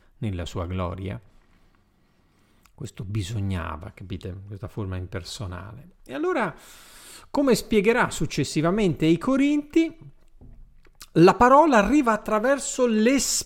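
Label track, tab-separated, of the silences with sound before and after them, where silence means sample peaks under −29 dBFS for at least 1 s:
1.160000	2.810000	silence
9.880000	11.010000	silence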